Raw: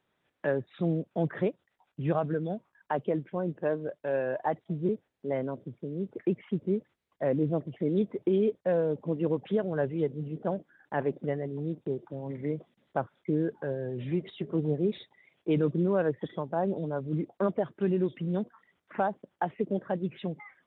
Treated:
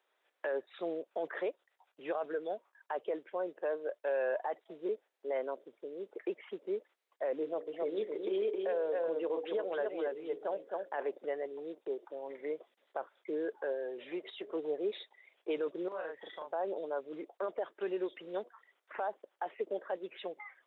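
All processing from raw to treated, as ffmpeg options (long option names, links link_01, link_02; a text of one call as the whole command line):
ffmpeg -i in.wav -filter_complex "[0:a]asettb=1/sr,asplit=3[link_01][link_02][link_03];[link_01]atrim=end=7.414[link_04];[link_02]atrim=start=7.41:end=11.07,asetpts=PTS-STARTPTS,afade=type=in:duration=0.004:curve=qsin,afade=type=out:start_time=3.656:duration=0.004:curve=qsin,bandreject=frequency=60:width_type=h:width=6,bandreject=frequency=120:width_type=h:width=6,bandreject=frequency=180:width_type=h:width=6,bandreject=frequency=240:width_type=h:width=6,bandreject=frequency=300:width_type=h:width=6,bandreject=frequency=360:width_type=h:width=6,bandreject=frequency=420:width_type=h:width=6,bandreject=frequency=480:width_type=h:width=6,bandreject=frequency=540:width_type=h:width=6,aecho=1:1:265:0.562,atrim=end_sample=161406[link_05];[link_03]atrim=start=11.066[link_06];[link_04][link_05]acrossfade=duration=0.004:curve1=hsin:curve2=qsin[link_07];[link_07][link_06]acrossfade=duration=0.004:curve1=qsin:curve2=hsin,asettb=1/sr,asplit=3[link_08][link_09][link_10];[link_08]atrim=end=15.884[link_11];[link_09]atrim=start=15.88:end=16.52,asetpts=PTS-STARTPTS,afade=type=in:duration=0.004:curve=qsin,afade=type=out:start_time=0.636:duration=0.004:curve=qsin,equalizer=frequency=400:width=1.2:gain=-9.5,acompressor=threshold=-36dB:ratio=4:attack=3.2:release=140:knee=1:detection=peak,asplit=2[link_12][link_13];[link_13]adelay=37,volume=-2dB[link_14];[link_12][link_14]amix=inputs=2:normalize=0,atrim=end_sample=28224[link_15];[link_10]atrim=start=16.516[link_16];[link_11][link_15]acrossfade=duration=0.004:curve1=hsin:curve2=qsin[link_17];[link_17][link_16]acrossfade=duration=0.004:curve1=qsin:curve2=hsin,highpass=frequency=430:width=0.5412,highpass=frequency=430:width=1.3066,alimiter=level_in=2.5dB:limit=-24dB:level=0:latency=1:release=33,volume=-2.5dB" out.wav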